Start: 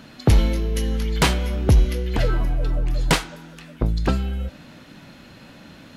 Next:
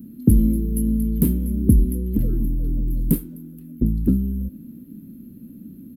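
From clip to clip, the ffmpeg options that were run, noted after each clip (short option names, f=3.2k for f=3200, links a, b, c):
-af "firequalizer=gain_entry='entry(140,0);entry(220,12);entry(690,-29);entry(6400,-26);entry(12000,13)':delay=0.05:min_phase=1,volume=-1dB"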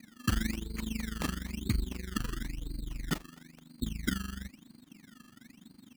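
-af "tremolo=f=24:d=0.857,acrusher=samples=20:mix=1:aa=0.000001:lfo=1:lforange=20:lforate=1,tiltshelf=f=730:g=-4.5,volume=-8.5dB"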